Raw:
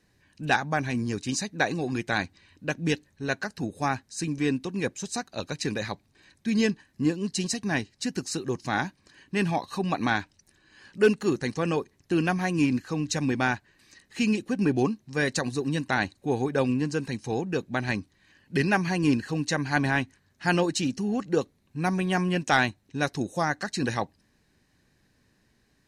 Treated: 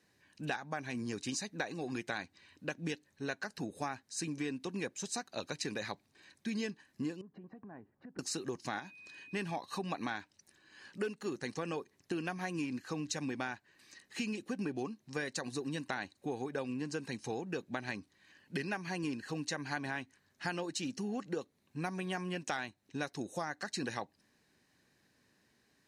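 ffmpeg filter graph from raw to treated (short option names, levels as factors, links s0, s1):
-filter_complex "[0:a]asettb=1/sr,asplit=3[s0][s1][s2];[s0]atrim=end=7.214[s3];[s1]atrim=start=7.21:end=8.19,asetpts=PTS-STARTPTS,afade=t=in:d=0.004:c=qsin,afade=t=out:st=0.976:d=0.004:c=qsin,lowpass=f=1300:w=0.5412,lowpass=f=1300:w=1.3066,acompressor=threshold=0.00794:ratio=8:attack=3.2:release=140:knee=1:detection=peak[s4];[s2]atrim=start=8.186[s5];[s3][s4]acrossfade=d=0.004:c1=hsin:c2=qsin[s6];[s6][s5]acrossfade=d=0.004:c1=qsin:c2=hsin,asettb=1/sr,asplit=3[s7][s8][s9];[s7]atrim=end=8.794[s10];[s8]atrim=start=8.79:end=9.34,asetpts=PTS-STARTPTS,afade=t=in:d=0.004:c=qsin,afade=t=out:st=0.546:d=0.004:c=qsin,equalizer=f=3700:t=o:w=0.31:g=4.5,acompressor=threshold=0.0158:ratio=2:attack=3.2:release=140:knee=1:detection=peak,aeval=exprs='val(0)+0.00355*sin(2*PI*2500*n/s)':c=same[s11];[s9]atrim=start=9.336[s12];[s10][s11]acrossfade=d=0.004:c1=hsin:c2=qsin[s13];[s13][s12]acrossfade=d=0.004:c1=qsin:c2=hsin,highpass=f=250:p=1,acompressor=threshold=0.0251:ratio=6,volume=0.75"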